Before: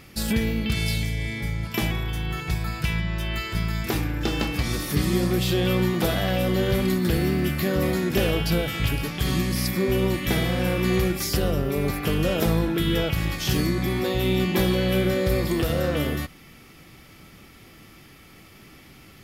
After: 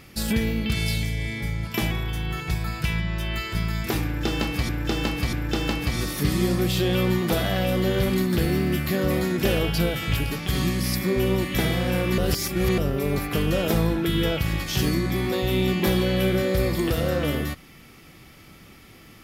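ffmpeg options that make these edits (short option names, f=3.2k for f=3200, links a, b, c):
-filter_complex "[0:a]asplit=5[a][b][c][d][e];[a]atrim=end=4.692[f];[b]atrim=start=4.048:end=4.692[g];[c]atrim=start=4.048:end=10.902[h];[d]atrim=start=10.898:end=11.502,asetpts=PTS-STARTPTS,areverse[i];[e]atrim=start=11.498[j];[f][g]acrossfade=d=0.004:c1=hsin:c2=hsin[k];[k][h]acrossfade=d=0.004:c1=hsin:c2=hsin[l];[l][i]acrossfade=d=0.004:c1=hsin:c2=hsin[m];[m][j]acrossfade=d=0.004:c1=hsin:c2=hsin"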